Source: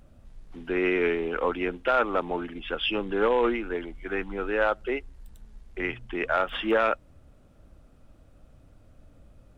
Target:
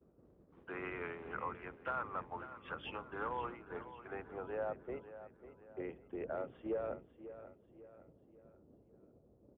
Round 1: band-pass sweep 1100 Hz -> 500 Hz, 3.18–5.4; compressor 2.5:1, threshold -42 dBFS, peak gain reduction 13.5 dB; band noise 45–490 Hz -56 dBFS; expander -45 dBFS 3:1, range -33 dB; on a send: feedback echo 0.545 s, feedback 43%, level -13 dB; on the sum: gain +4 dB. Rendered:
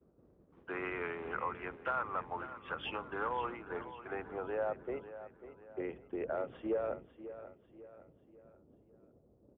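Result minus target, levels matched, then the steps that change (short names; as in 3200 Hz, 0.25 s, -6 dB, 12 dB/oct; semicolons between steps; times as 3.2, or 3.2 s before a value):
compressor: peak gain reduction -4 dB
change: compressor 2.5:1, threshold -48.5 dBFS, peak gain reduction 17.5 dB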